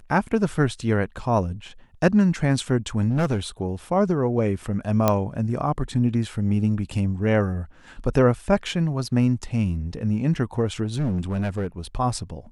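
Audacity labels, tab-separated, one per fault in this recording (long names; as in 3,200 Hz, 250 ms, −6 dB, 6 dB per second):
3.100000	3.380000	clipping −17.5 dBFS
5.080000	5.080000	click −5 dBFS
10.830000	11.670000	clipping −20.5 dBFS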